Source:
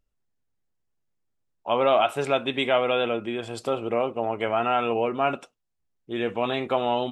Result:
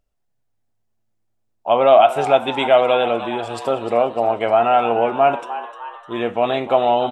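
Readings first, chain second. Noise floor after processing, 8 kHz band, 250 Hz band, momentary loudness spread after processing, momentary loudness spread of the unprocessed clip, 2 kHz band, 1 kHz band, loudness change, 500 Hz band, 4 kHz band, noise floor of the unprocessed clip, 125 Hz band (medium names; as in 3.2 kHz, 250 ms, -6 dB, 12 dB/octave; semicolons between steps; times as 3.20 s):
-69 dBFS, no reading, +3.5 dB, 15 LU, 8 LU, +4.0 dB, +9.5 dB, +8.0 dB, +8.5 dB, +3.5 dB, -76 dBFS, +3.0 dB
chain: peaking EQ 690 Hz +8.5 dB 0.6 oct; on a send: frequency-shifting echo 303 ms, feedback 56%, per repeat +110 Hz, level -13.5 dB; on the sum: Schroeder reverb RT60 0.62 s, combs from 30 ms, DRR 20 dB; trim +3 dB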